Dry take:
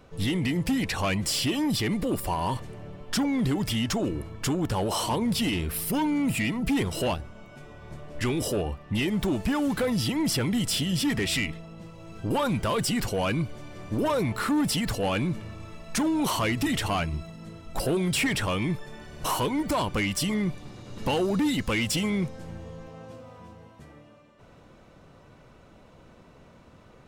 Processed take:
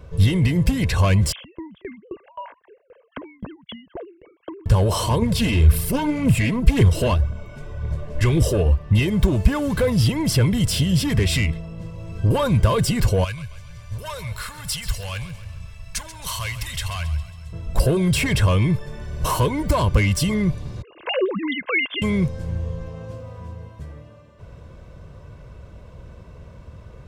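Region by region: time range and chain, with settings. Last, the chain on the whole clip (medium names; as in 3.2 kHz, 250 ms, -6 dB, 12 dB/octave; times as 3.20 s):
1.32–4.66 s: formants replaced by sine waves + compression, threshold -31 dBFS + sawtooth tremolo in dB decaying 3.8 Hz, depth 28 dB
5.22–8.80 s: phaser 1.9 Hz, delay 4.9 ms, feedback 43% + loudspeaker Doppler distortion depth 0.11 ms
13.24–17.53 s: amplifier tone stack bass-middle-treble 10-0-10 + two-band feedback delay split 300 Hz, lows 329 ms, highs 135 ms, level -13.5 dB
20.82–22.02 s: formants replaced by sine waves + tilt EQ +3 dB/octave
whole clip: peaking EQ 61 Hz +14.5 dB 2.9 oct; comb 1.9 ms, depth 45%; trim +2.5 dB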